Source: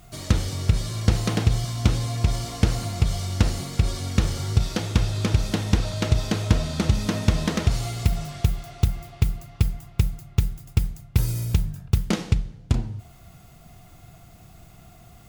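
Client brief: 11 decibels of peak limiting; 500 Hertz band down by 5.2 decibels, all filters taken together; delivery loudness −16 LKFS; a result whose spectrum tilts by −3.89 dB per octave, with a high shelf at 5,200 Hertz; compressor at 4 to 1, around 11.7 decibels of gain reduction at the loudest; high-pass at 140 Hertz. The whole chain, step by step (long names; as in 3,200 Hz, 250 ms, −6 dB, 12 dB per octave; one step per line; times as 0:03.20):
high-pass filter 140 Hz
parametric band 500 Hz −7 dB
high-shelf EQ 5,200 Hz +3.5 dB
downward compressor 4 to 1, threshold −34 dBFS
level +23.5 dB
brickwall limiter −3.5 dBFS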